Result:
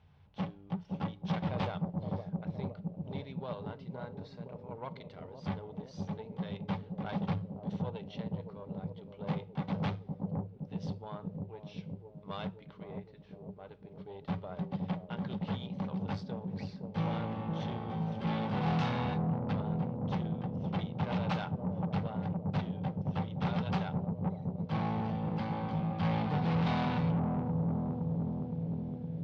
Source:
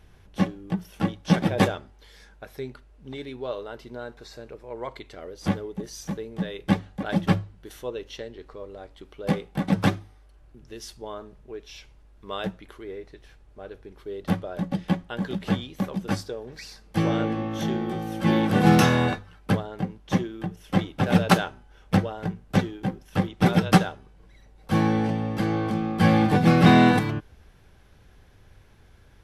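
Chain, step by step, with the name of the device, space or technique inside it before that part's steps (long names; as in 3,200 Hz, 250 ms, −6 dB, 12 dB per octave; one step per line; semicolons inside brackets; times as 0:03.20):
analogue delay pedal into a guitar amplifier (bucket-brigade delay 514 ms, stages 2,048, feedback 72%, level −5.5 dB; tube saturation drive 24 dB, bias 0.65; loudspeaker in its box 79–4,400 Hz, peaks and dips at 87 Hz +9 dB, 150 Hz +9 dB, 340 Hz −10 dB, 880 Hz +6 dB, 1,700 Hz −5 dB)
level −6.5 dB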